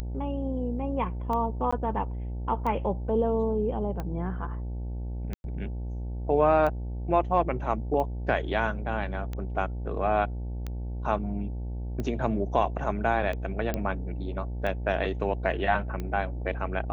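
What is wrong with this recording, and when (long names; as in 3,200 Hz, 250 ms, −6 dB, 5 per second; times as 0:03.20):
mains buzz 60 Hz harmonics 15 −33 dBFS
scratch tick 45 rpm −21 dBFS
0:01.71–0:01.73: drop-out 15 ms
0:05.34–0:05.44: drop-out 101 ms
0:13.74: click −15 dBFS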